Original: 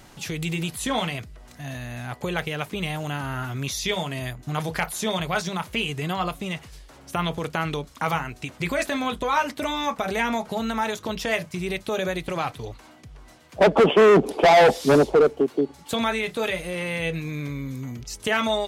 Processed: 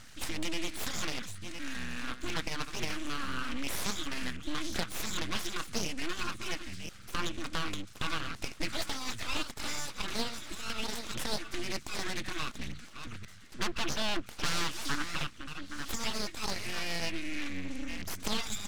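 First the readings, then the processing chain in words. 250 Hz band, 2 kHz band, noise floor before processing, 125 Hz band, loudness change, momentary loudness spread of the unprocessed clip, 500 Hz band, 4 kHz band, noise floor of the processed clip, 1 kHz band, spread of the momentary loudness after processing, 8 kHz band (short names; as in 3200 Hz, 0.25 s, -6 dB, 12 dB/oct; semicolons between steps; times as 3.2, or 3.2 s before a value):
-12.0 dB, -9.5 dB, -49 dBFS, -14.0 dB, -12.5 dB, 15 LU, -22.0 dB, -4.5 dB, -49 dBFS, -15.0 dB, 6 LU, -2.5 dB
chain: reverse delay 0.53 s, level -12 dB; steep low-pass 9500 Hz; FFT band-reject 190–1200 Hz; compressor 2:1, threshold -32 dBFS, peak gain reduction 7 dB; full-wave rectifier; Doppler distortion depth 0.36 ms; gain +1.5 dB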